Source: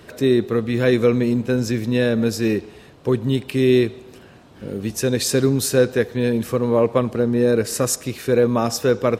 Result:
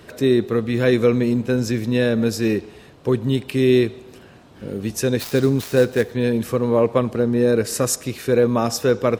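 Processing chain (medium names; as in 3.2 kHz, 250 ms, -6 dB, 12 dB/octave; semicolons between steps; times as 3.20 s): 5.19–6.12 s: dead-time distortion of 0.06 ms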